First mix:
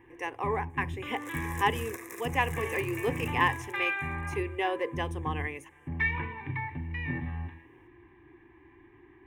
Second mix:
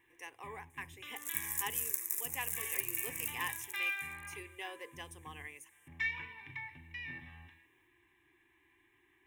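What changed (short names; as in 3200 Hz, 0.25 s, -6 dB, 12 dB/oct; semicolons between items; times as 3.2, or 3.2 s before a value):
first sound: remove LPF 1400 Hz 6 dB/oct; second sound: add high shelf 4700 Hz +11 dB; master: add pre-emphasis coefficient 0.9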